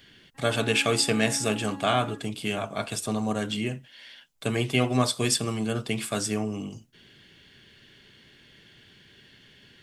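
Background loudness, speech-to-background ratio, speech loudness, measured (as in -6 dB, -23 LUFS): -42.0 LUFS, 15.0 dB, -27.0 LUFS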